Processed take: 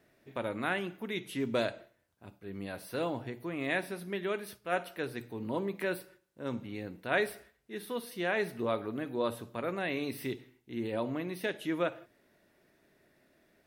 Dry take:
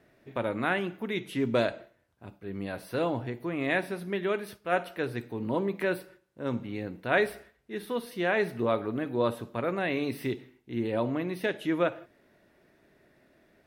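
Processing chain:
high-shelf EQ 4,100 Hz +7.5 dB
mains-hum notches 60/120 Hz
level −5 dB

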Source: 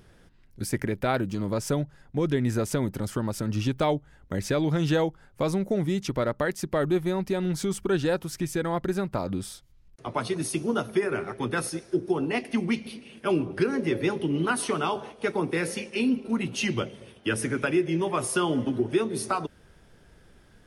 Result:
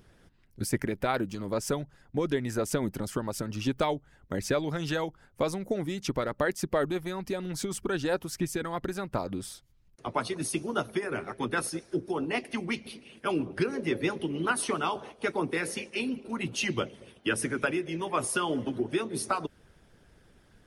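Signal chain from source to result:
harmonic and percussive parts rebalanced harmonic −9 dB

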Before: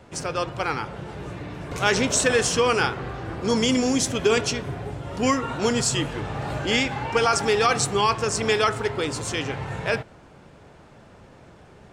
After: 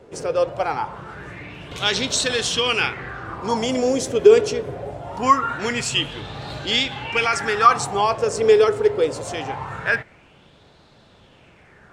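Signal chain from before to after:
auto-filter bell 0.23 Hz 430–4,000 Hz +15 dB
level −4 dB

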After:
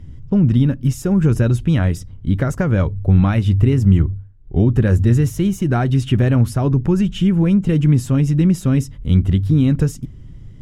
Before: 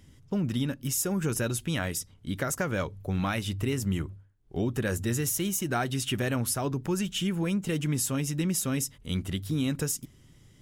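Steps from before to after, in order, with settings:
RIAA equalisation playback
level +6 dB

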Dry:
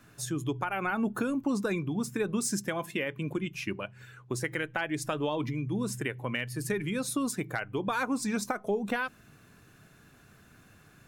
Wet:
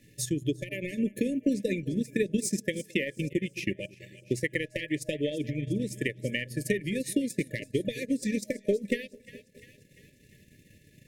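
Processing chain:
echo with a time of its own for lows and highs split 700 Hz, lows 215 ms, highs 347 ms, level −13.5 dB
transient designer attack +6 dB, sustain −11 dB
brick-wall band-stop 620–1,700 Hz

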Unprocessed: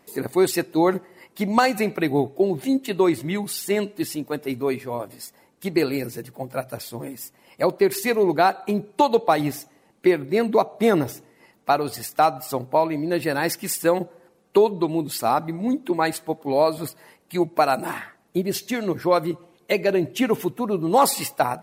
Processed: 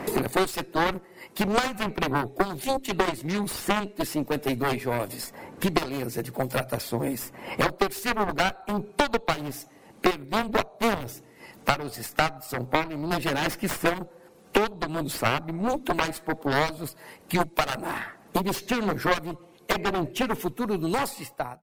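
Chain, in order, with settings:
fade-out on the ending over 2.31 s
harmonic generator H 4 −13 dB, 7 −12 dB, 8 −28 dB, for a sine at −4.5 dBFS
multiband upward and downward compressor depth 100%
level −3.5 dB

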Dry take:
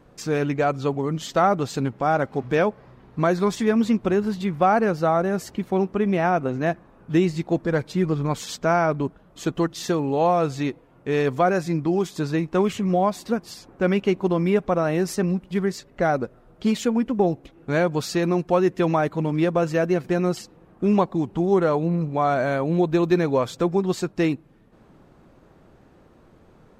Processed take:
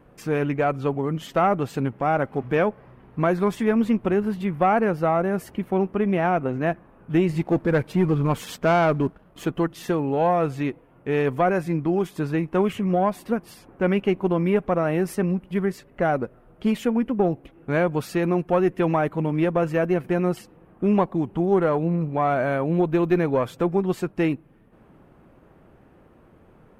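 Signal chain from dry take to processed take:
one-sided soft clipper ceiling −8.5 dBFS
flat-topped bell 5,300 Hz −10 dB 1.3 octaves
0:07.29–0:09.46: leveller curve on the samples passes 1

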